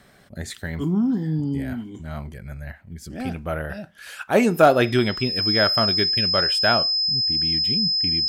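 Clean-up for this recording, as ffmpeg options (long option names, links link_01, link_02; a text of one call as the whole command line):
ffmpeg -i in.wav -af "bandreject=frequency=5100:width=30" out.wav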